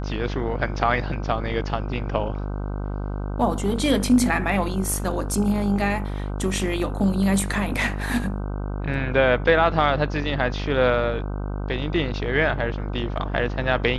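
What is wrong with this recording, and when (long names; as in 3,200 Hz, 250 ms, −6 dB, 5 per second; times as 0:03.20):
mains buzz 50 Hz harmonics 31 −28 dBFS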